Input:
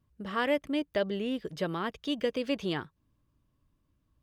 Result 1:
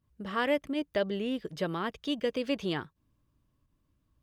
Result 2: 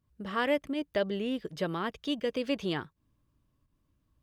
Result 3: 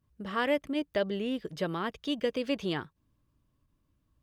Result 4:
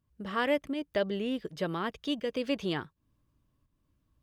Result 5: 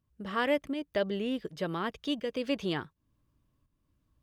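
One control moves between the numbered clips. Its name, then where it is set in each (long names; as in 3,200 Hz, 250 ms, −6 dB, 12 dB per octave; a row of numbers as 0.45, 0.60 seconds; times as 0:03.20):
fake sidechain pumping, release: 94, 149, 60, 273, 406 milliseconds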